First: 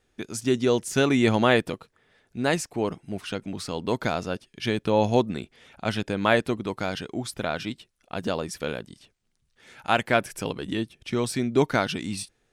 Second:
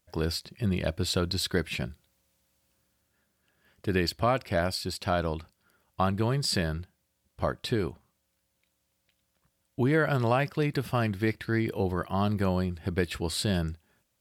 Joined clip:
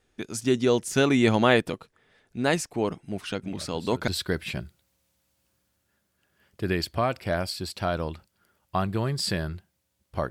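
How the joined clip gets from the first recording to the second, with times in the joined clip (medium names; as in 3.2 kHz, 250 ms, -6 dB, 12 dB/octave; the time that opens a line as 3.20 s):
first
3.43 s: add second from 0.68 s 0.65 s -17 dB
4.08 s: go over to second from 1.33 s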